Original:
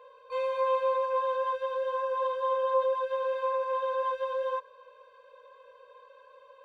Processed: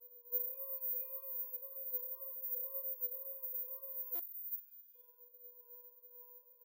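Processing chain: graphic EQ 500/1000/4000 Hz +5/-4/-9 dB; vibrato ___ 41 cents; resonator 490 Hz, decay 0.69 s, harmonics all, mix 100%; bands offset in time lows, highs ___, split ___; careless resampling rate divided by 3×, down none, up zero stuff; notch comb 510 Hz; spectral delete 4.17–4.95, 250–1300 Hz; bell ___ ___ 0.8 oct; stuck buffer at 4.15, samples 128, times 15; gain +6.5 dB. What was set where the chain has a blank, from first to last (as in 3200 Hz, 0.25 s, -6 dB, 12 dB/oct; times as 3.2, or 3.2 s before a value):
1.9 Hz, 0.46 s, 2000 Hz, 2000 Hz, -10 dB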